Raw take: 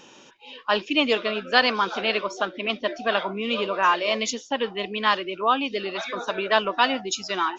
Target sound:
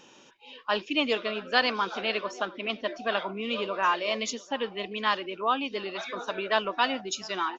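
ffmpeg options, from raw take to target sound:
ffmpeg -i in.wav -filter_complex "[0:a]asplit=2[link_01][link_02];[link_02]adelay=699.7,volume=-23dB,highshelf=frequency=4000:gain=-15.7[link_03];[link_01][link_03]amix=inputs=2:normalize=0,volume=-5dB" out.wav

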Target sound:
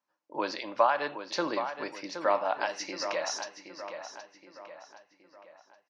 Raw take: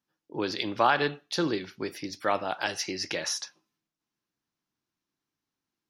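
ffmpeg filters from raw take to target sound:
ffmpeg -i in.wav -filter_complex "[0:a]alimiter=limit=-16.5dB:level=0:latency=1:release=352,highpass=330,equalizer=frequency=400:width_type=q:width=4:gain=-8,equalizer=frequency=590:width_type=q:width=4:gain=9,equalizer=frequency=1000:width_type=q:width=4:gain=9,equalizer=frequency=3400:width_type=q:width=4:gain=-8,equalizer=frequency=5100:width_type=q:width=4:gain=-3,lowpass=frequency=6500:width=0.5412,lowpass=frequency=6500:width=1.3066,asplit=2[link_01][link_02];[link_02]adelay=771,lowpass=frequency=4300:poles=1,volume=-9dB,asplit=2[link_03][link_04];[link_04]adelay=771,lowpass=frequency=4300:poles=1,volume=0.47,asplit=2[link_05][link_06];[link_06]adelay=771,lowpass=frequency=4300:poles=1,volume=0.47,asplit=2[link_07][link_08];[link_08]adelay=771,lowpass=frequency=4300:poles=1,volume=0.47,asplit=2[link_09][link_10];[link_10]adelay=771,lowpass=frequency=4300:poles=1,volume=0.47[link_11];[link_01][link_03][link_05][link_07][link_09][link_11]amix=inputs=6:normalize=0" out.wav

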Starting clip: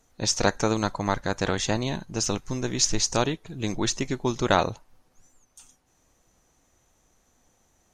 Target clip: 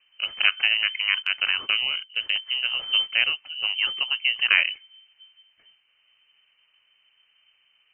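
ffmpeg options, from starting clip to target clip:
ffmpeg -i in.wav -filter_complex "[0:a]lowpass=frequency=2600:width_type=q:width=0.5098,lowpass=frequency=2600:width_type=q:width=0.6013,lowpass=frequency=2600:width_type=q:width=0.9,lowpass=frequency=2600:width_type=q:width=2.563,afreqshift=-3100,asettb=1/sr,asplit=3[link_01][link_02][link_03];[link_01]atrim=end=1.224[link_04];[link_02]atrim=start=1.22:end=2.43,asetpts=PTS-STARTPTS,afade=type=in:duration=0.004:curve=qsin,afade=type=out:start_time=1.206:duration=0.004:curve=qsin,agate=range=-12dB:threshold=-33dB:ratio=16:detection=peak[link_05];[link_03]atrim=start=2.426[link_06];[link_04][link_05]acrossfade=duration=0.004:curve1=hsin:curve2=qsin[link_07];[link_07][link_06]acrossfade=duration=0.004:curve1=qsin:curve2=hsin,equalizer=frequency=450:width=0.3:gain=-7.5,volume=4dB" out.wav

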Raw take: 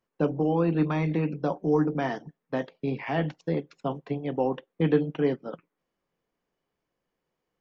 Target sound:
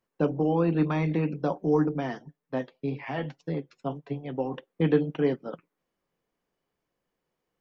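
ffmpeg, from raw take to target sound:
ffmpeg -i in.wav -filter_complex "[0:a]asettb=1/sr,asplit=3[link_01][link_02][link_03];[link_01]atrim=end=1.894[link_04];[link_02]atrim=start=1.89:end=4.54,asetpts=PTS-STARTPTS,afade=type=in:duration=0.004:curve=qsin,afade=type=out:start_time=2.646:duration=0.004:curve=qsin,flanger=delay=6.7:depth=1.6:regen=29:speed=1.9:shape=sinusoidal[link_05];[link_03]atrim=start=4.536[link_06];[link_04][link_05]acrossfade=duration=0.004:curve1=hsin:curve2=qsin[link_07];[link_07][link_06]acrossfade=duration=0.004:curve1=qsin:curve2=hsin" out.wav

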